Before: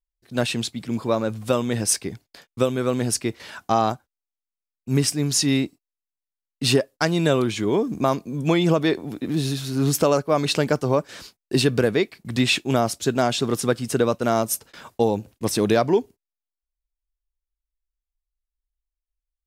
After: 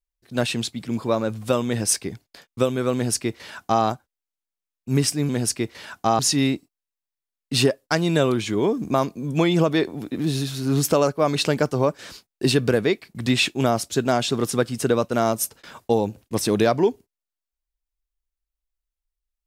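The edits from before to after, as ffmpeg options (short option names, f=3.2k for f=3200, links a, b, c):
-filter_complex "[0:a]asplit=3[a][b][c];[a]atrim=end=5.292[d];[b]atrim=start=2.938:end=3.842[e];[c]atrim=start=5.288[f];[d][e]acrossfade=d=0.004:c1=hsin:c2=hsin[g];[g][f]acrossfade=d=0.004:c1=hsin:c2=hsin"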